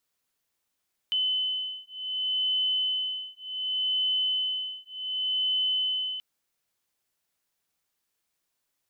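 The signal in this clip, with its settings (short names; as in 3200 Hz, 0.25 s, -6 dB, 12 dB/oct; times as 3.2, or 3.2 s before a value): beating tones 3030 Hz, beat 0.67 Hz, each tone -29 dBFS 5.08 s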